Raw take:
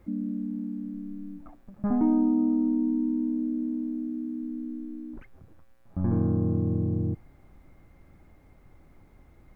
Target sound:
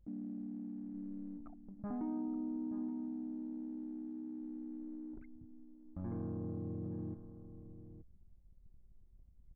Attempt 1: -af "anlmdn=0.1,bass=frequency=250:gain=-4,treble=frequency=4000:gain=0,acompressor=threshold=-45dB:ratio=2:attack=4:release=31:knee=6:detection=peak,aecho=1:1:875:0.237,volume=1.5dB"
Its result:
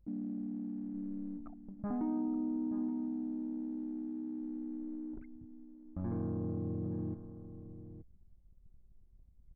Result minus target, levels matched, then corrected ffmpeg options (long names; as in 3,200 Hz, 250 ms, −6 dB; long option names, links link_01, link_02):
downward compressor: peak gain reduction −4 dB
-af "anlmdn=0.1,bass=frequency=250:gain=-4,treble=frequency=4000:gain=0,acompressor=threshold=-53.5dB:ratio=2:attack=4:release=31:knee=6:detection=peak,aecho=1:1:875:0.237,volume=1.5dB"